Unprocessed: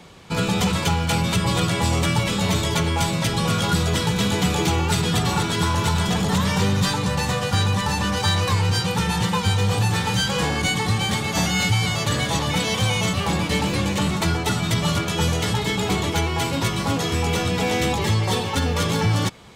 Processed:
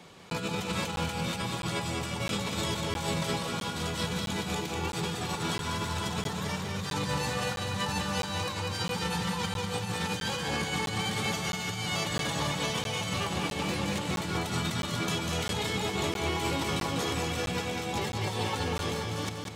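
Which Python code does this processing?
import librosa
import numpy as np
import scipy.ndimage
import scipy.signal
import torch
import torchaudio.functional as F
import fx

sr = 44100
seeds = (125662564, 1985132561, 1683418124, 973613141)

p1 = fx.highpass(x, sr, hz=140.0, slope=6)
p2 = fx.over_compress(p1, sr, threshold_db=-25.0, ratio=-0.5)
p3 = p2 + fx.echo_feedback(p2, sr, ms=196, feedback_pct=56, wet_db=-5.0, dry=0)
p4 = fx.buffer_crackle(p3, sr, first_s=0.3, period_s=0.66, block=512, kind='zero')
y = p4 * 10.0 ** (-7.5 / 20.0)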